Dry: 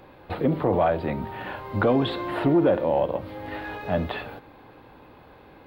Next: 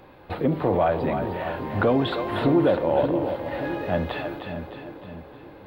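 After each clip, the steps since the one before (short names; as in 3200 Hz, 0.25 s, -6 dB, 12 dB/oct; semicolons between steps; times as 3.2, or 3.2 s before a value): split-band echo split 490 Hz, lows 0.578 s, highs 0.308 s, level -7 dB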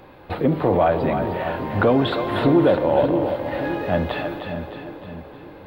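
reverb RT60 2.1 s, pre-delay 0.115 s, DRR 15.5 dB; gain +3.5 dB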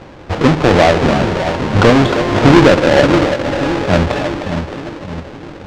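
half-waves squared off; companded quantiser 4-bit; air absorption 140 m; gain +5 dB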